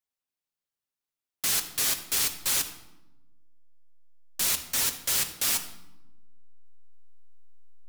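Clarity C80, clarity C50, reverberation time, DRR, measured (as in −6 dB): 12.5 dB, 10.5 dB, 0.95 s, 5.0 dB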